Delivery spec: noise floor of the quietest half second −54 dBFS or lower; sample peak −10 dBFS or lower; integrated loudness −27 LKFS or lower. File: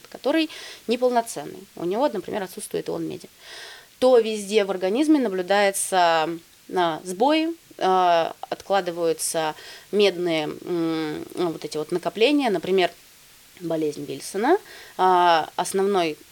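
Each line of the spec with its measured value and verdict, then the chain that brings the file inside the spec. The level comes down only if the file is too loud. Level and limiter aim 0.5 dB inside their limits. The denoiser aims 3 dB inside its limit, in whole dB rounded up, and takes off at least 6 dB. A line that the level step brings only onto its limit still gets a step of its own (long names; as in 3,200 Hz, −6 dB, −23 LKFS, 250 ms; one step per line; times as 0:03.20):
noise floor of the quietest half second −51 dBFS: out of spec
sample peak −6.5 dBFS: out of spec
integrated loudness −23.0 LKFS: out of spec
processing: level −4.5 dB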